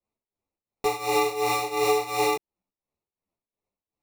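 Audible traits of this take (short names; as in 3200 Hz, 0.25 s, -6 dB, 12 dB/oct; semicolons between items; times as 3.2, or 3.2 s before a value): tremolo triangle 2.8 Hz, depth 85%; aliases and images of a low sample rate 1600 Hz, jitter 0%; a shimmering, thickened sound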